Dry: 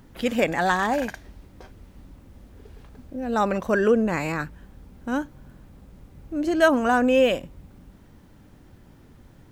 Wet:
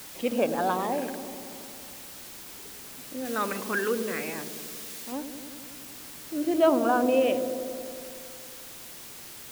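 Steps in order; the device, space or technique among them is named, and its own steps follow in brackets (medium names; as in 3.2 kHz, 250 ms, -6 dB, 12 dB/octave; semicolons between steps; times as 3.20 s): shortwave radio (band-pass 250–2800 Hz; tremolo 0.31 Hz, depth 50%; LFO notch sine 0.47 Hz 590–2000 Hz; white noise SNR 13 dB); 3.25–5.12 s: tilt shelf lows -4 dB; feedback echo behind a low-pass 92 ms, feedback 79%, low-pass 580 Hz, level -7 dB; trim -1.5 dB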